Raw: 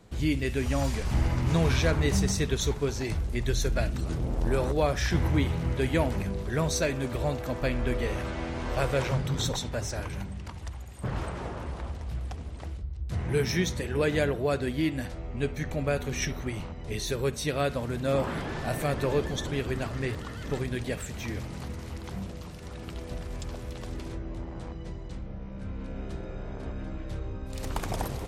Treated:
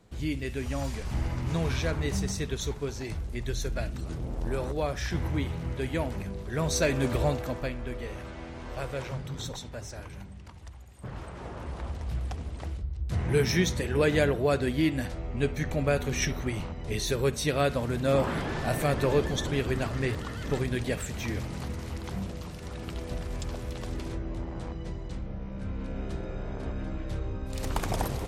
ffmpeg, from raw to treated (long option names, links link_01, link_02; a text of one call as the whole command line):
ffmpeg -i in.wav -af "volume=14dB,afade=type=in:start_time=6.48:duration=0.6:silence=0.354813,afade=type=out:start_time=7.08:duration=0.68:silence=0.251189,afade=type=in:start_time=11.27:duration=0.82:silence=0.334965" out.wav